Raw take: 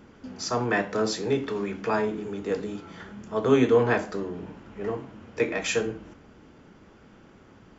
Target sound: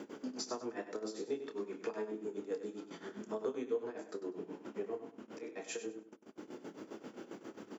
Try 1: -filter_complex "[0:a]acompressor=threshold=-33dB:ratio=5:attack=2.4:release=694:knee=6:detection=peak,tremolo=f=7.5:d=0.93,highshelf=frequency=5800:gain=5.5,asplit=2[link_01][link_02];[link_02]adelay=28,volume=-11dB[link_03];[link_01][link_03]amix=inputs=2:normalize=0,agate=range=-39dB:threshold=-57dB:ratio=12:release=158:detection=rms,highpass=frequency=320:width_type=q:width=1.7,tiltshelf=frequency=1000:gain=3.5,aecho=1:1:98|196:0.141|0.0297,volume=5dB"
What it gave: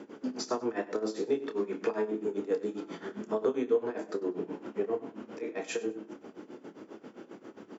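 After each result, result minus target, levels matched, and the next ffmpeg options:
downward compressor: peak gain reduction −9 dB; 8,000 Hz band −6.5 dB; echo-to-direct −6.5 dB
-filter_complex "[0:a]acompressor=threshold=-44.5dB:ratio=5:attack=2.4:release=694:knee=6:detection=peak,tremolo=f=7.5:d=0.93,highshelf=frequency=5800:gain=16.5,asplit=2[link_01][link_02];[link_02]adelay=28,volume=-11dB[link_03];[link_01][link_03]amix=inputs=2:normalize=0,agate=range=-39dB:threshold=-57dB:ratio=12:release=158:detection=rms,highpass=frequency=320:width_type=q:width=1.7,tiltshelf=frequency=1000:gain=3.5,aecho=1:1:98|196:0.141|0.0297,volume=5dB"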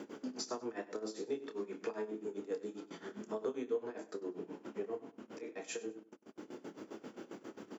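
echo-to-direct −6.5 dB
-filter_complex "[0:a]acompressor=threshold=-44.5dB:ratio=5:attack=2.4:release=694:knee=6:detection=peak,tremolo=f=7.5:d=0.93,highshelf=frequency=5800:gain=16.5,asplit=2[link_01][link_02];[link_02]adelay=28,volume=-11dB[link_03];[link_01][link_03]amix=inputs=2:normalize=0,agate=range=-39dB:threshold=-57dB:ratio=12:release=158:detection=rms,highpass=frequency=320:width_type=q:width=1.7,tiltshelf=frequency=1000:gain=3.5,aecho=1:1:98|196|294:0.299|0.0627|0.0132,volume=5dB"

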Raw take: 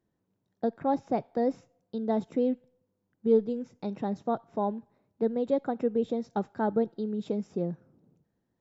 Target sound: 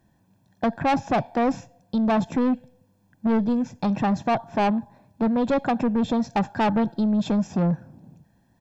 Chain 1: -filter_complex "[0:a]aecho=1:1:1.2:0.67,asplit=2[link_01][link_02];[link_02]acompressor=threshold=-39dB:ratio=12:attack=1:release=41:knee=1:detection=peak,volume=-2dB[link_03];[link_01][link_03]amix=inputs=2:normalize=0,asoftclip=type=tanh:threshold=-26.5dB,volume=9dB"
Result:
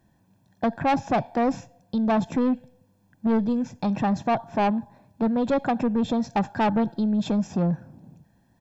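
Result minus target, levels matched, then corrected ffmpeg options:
downward compressor: peak gain reduction +10.5 dB
-filter_complex "[0:a]aecho=1:1:1.2:0.67,asplit=2[link_01][link_02];[link_02]acompressor=threshold=-27.5dB:ratio=12:attack=1:release=41:knee=1:detection=peak,volume=-2dB[link_03];[link_01][link_03]amix=inputs=2:normalize=0,asoftclip=type=tanh:threshold=-26.5dB,volume=9dB"

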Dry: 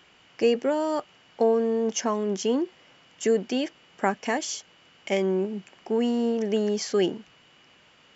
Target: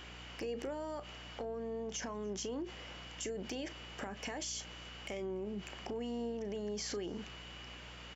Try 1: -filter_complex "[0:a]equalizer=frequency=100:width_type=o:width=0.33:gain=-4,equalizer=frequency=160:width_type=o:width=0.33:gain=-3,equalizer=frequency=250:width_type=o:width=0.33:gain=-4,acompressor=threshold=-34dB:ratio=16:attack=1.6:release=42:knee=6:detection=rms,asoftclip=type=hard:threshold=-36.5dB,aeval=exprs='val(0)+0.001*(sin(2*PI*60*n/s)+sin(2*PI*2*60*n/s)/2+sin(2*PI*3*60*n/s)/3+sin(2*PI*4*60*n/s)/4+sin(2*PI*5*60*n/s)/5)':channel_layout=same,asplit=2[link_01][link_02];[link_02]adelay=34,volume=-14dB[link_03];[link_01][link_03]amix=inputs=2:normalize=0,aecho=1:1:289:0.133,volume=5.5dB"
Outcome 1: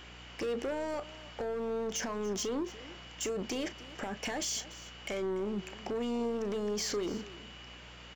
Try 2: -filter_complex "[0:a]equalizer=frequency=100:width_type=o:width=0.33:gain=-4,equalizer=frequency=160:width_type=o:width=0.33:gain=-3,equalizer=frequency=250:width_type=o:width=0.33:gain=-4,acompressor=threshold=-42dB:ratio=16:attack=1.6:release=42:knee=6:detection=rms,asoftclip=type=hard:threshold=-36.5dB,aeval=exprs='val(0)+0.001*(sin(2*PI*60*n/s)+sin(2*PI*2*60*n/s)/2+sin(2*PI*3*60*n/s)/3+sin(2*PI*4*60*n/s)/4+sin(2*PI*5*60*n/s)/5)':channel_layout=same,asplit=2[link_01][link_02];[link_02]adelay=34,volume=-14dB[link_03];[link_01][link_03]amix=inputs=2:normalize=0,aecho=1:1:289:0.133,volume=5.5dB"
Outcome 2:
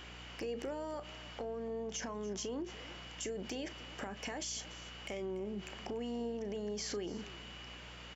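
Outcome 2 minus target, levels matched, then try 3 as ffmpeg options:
echo-to-direct +10 dB
-filter_complex "[0:a]equalizer=frequency=100:width_type=o:width=0.33:gain=-4,equalizer=frequency=160:width_type=o:width=0.33:gain=-3,equalizer=frequency=250:width_type=o:width=0.33:gain=-4,acompressor=threshold=-42dB:ratio=16:attack=1.6:release=42:knee=6:detection=rms,asoftclip=type=hard:threshold=-36.5dB,aeval=exprs='val(0)+0.001*(sin(2*PI*60*n/s)+sin(2*PI*2*60*n/s)/2+sin(2*PI*3*60*n/s)/3+sin(2*PI*4*60*n/s)/4+sin(2*PI*5*60*n/s)/5)':channel_layout=same,asplit=2[link_01][link_02];[link_02]adelay=34,volume=-14dB[link_03];[link_01][link_03]amix=inputs=2:normalize=0,aecho=1:1:289:0.0422,volume=5.5dB"

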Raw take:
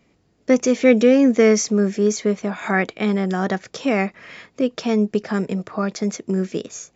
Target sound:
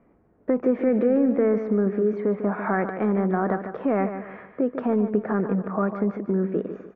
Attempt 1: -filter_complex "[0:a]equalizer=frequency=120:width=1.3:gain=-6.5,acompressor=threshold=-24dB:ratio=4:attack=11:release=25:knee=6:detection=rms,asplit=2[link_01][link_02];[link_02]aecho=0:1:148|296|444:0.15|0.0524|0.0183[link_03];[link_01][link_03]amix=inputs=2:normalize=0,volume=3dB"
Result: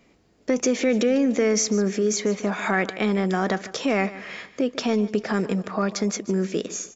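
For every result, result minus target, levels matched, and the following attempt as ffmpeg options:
2,000 Hz band +6.5 dB; echo-to-direct −7 dB
-filter_complex "[0:a]equalizer=frequency=120:width=1.3:gain=-6.5,acompressor=threshold=-24dB:ratio=4:attack=11:release=25:knee=6:detection=rms,lowpass=frequency=1500:width=0.5412,lowpass=frequency=1500:width=1.3066,asplit=2[link_01][link_02];[link_02]aecho=0:1:148|296|444:0.15|0.0524|0.0183[link_03];[link_01][link_03]amix=inputs=2:normalize=0,volume=3dB"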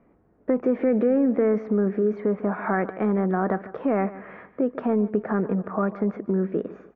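echo-to-direct −7 dB
-filter_complex "[0:a]equalizer=frequency=120:width=1.3:gain=-6.5,acompressor=threshold=-24dB:ratio=4:attack=11:release=25:knee=6:detection=rms,lowpass=frequency=1500:width=0.5412,lowpass=frequency=1500:width=1.3066,asplit=2[link_01][link_02];[link_02]aecho=0:1:148|296|444|592:0.335|0.117|0.041|0.0144[link_03];[link_01][link_03]amix=inputs=2:normalize=0,volume=3dB"

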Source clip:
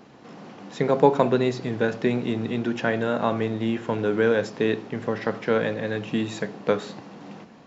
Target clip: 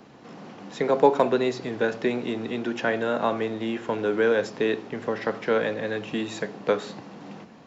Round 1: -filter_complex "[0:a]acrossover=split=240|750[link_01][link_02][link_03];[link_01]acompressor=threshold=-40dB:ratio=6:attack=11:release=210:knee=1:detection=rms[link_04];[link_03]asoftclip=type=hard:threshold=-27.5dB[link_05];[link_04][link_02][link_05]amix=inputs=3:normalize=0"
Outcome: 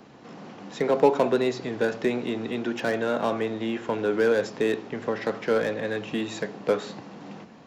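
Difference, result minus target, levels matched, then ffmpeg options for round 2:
hard clipping: distortion +27 dB
-filter_complex "[0:a]acrossover=split=240|750[link_01][link_02][link_03];[link_01]acompressor=threshold=-40dB:ratio=6:attack=11:release=210:knee=1:detection=rms[link_04];[link_03]asoftclip=type=hard:threshold=-16dB[link_05];[link_04][link_02][link_05]amix=inputs=3:normalize=0"

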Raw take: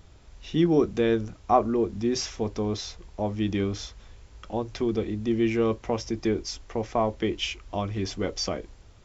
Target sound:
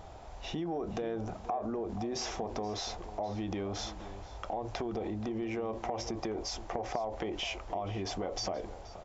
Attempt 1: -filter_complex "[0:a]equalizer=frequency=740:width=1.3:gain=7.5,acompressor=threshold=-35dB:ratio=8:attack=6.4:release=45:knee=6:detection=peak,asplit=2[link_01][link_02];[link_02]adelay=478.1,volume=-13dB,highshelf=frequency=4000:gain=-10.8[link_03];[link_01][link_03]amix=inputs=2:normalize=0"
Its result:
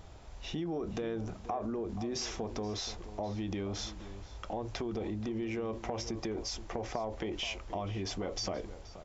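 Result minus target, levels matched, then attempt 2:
1,000 Hz band −3.5 dB
-filter_complex "[0:a]equalizer=frequency=740:width=1.3:gain=18.5,acompressor=threshold=-35dB:ratio=8:attack=6.4:release=45:knee=6:detection=peak,asplit=2[link_01][link_02];[link_02]adelay=478.1,volume=-13dB,highshelf=frequency=4000:gain=-10.8[link_03];[link_01][link_03]amix=inputs=2:normalize=0"

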